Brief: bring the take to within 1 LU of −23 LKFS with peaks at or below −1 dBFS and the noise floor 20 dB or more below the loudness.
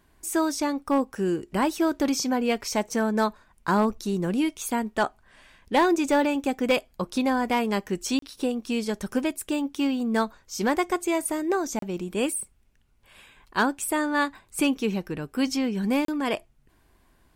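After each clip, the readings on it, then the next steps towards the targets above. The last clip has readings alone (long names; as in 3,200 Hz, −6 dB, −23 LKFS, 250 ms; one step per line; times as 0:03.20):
share of clipped samples 0.3%; peaks flattened at −14.0 dBFS; number of dropouts 3; longest dropout 33 ms; integrated loudness −26.5 LKFS; sample peak −14.0 dBFS; target loudness −23.0 LKFS
→ clipped peaks rebuilt −14 dBFS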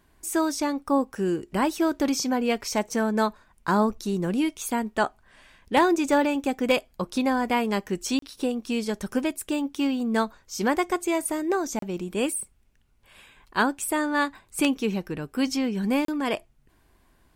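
share of clipped samples 0.0%; number of dropouts 3; longest dropout 33 ms
→ repair the gap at 0:08.19/0:11.79/0:16.05, 33 ms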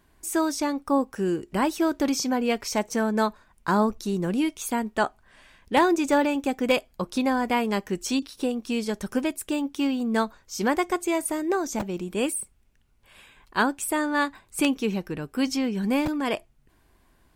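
number of dropouts 0; integrated loudness −26.0 LKFS; sample peak −5.0 dBFS; target loudness −23.0 LKFS
→ level +3 dB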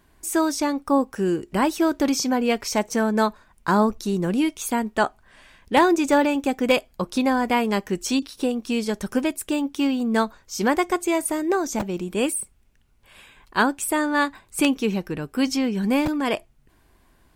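integrated loudness −23.0 LKFS; sample peak −2.0 dBFS; background noise floor −59 dBFS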